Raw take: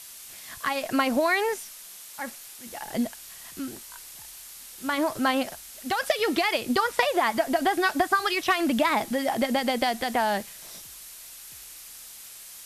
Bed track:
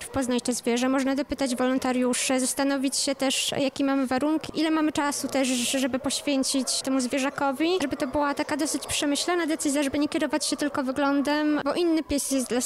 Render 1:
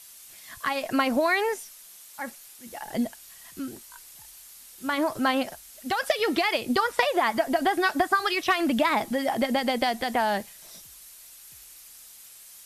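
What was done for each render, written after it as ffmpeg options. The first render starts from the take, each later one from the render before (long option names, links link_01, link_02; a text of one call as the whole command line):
ffmpeg -i in.wav -af "afftdn=noise_reduction=6:noise_floor=-45" out.wav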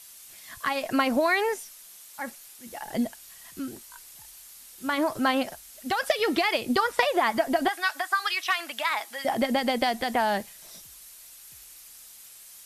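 ffmpeg -i in.wav -filter_complex "[0:a]asettb=1/sr,asplit=3[link_01][link_02][link_03];[link_01]atrim=end=7.684[link_04];[link_02]atrim=start=7.68:end=9.25,asetpts=PTS-STARTPTS,afade=type=in:duration=0.004:curve=qsin,afade=type=out:start_time=1.566:duration=0.004:curve=qsin,highpass=1100[link_05];[link_03]atrim=start=9.246[link_06];[link_04][link_05]acrossfade=duration=0.004:curve1=hsin:curve2=qsin[link_07];[link_07][link_06]acrossfade=duration=0.004:curve1=qsin:curve2=hsin" out.wav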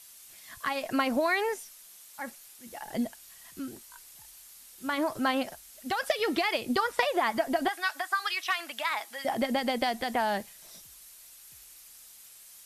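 ffmpeg -i in.wav -af "volume=-3.5dB" out.wav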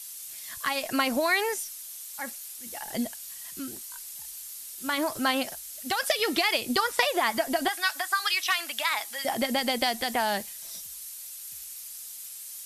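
ffmpeg -i in.wav -af "highshelf=frequency=3000:gain=11.5" out.wav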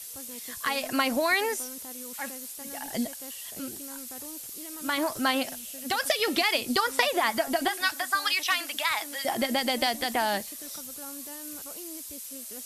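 ffmpeg -i in.wav -i bed.wav -filter_complex "[1:a]volume=-21.5dB[link_01];[0:a][link_01]amix=inputs=2:normalize=0" out.wav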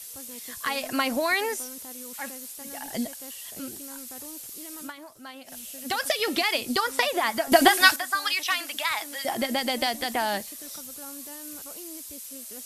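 ffmpeg -i in.wav -filter_complex "[0:a]asplit=5[link_01][link_02][link_03][link_04][link_05];[link_01]atrim=end=4.93,asetpts=PTS-STARTPTS,afade=type=out:start_time=4.8:duration=0.13:silence=0.141254[link_06];[link_02]atrim=start=4.93:end=5.45,asetpts=PTS-STARTPTS,volume=-17dB[link_07];[link_03]atrim=start=5.45:end=7.522,asetpts=PTS-STARTPTS,afade=type=in:duration=0.13:silence=0.141254[link_08];[link_04]atrim=start=7.518:end=7.962,asetpts=PTS-STARTPTS,volume=10dB[link_09];[link_05]atrim=start=7.958[link_10];[link_06][link_07][link_08]concat=n=3:v=0:a=1[link_11];[link_11][link_09]acrossfade=duration=0.004:curve1=hsin:curve2=hsin[link_12];[link_12][link_10]acrossfade=duration=0.004:curve1=hsin:curve2=hsin" out.wav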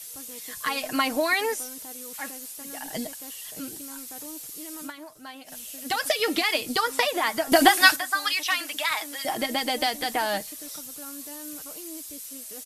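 ffmpeg -i in.wav -af "bandreject=frequency=60:width_type=h:width=6,bandreject=frequency=120:width_type=h:width=6,aecho=1:1:6.5:0.46" out.wav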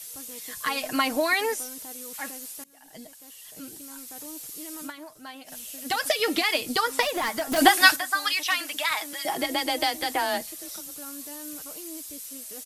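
ffmpeg -i in.wav -filter_complex "[0:a]asettb=1/sr,asplit=3[link_01][link_02][link_03];[link_01]atrim=end=7.024[link_04];[link_02]atrim=start=7.02:end=7.58,asetpts=PTS-STARTPTS,afade=type=in:duration=0.004:curve=qsin,afade=type=out:start_time=0.556:duration=0.004:curve=qsin,asoftclip=type=hard:threshold=-23dB[link_05];[link_03]atrim=start=7.576[link_06];[link_04][link_05]acrossfade=duration=0.004:curve1=hsin:curve2=qsin[link_07];[link_07][link_06]acrossfade=duration=0.004:curve1=qsin:curve2=hsin,asettb=1/sr,asplit=3[link_08][link_09][link_10];[link_08]atrim=end=9.134[link_11];[link_09]atrim=start=9.13:end=10.95,asetpts=PTS-STARTPTS,afade=type=in:duration=0.004:curve=qsin,afade=type=out:start_time=1.816:duration=0.004:curve=qsin,afreqshift=28[link_12];[link_10]atrim=start=10.946[link_13];[link_11][link_12]acrossfade=duration=0.004:curve1=hsin:curve2=qsin[link_14];[link_14][link_13]acrossfade=duration=0.004:curve1=qsin:curve2=hsin,asplit=2[link_15][link_16];[link_15]atrim=end=2.64,asetpts=PTS-STARTPTS,afade=type=out:start_time=2.636:duration=0.004:curve=hsin:silence=0.0668344[link_17];[link_16]atrim=start=2.64,asetpts=PTS-STARTPTS,afade=type=in:duration=1.84:silence=0.0668344[link_18];[link_17][link_18]concat=n=2:v=0:a=1" out.wav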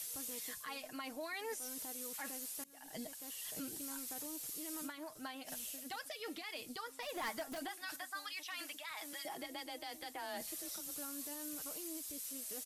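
ffmpeg -i in.wav -af "areverse,acompressor=threshold=-34dB:ratio=12,areverse,alimiter=level_in=10.5dB:limit=-24dB:level=0:latency=1:release=430,volume=-10.5dB" out.wav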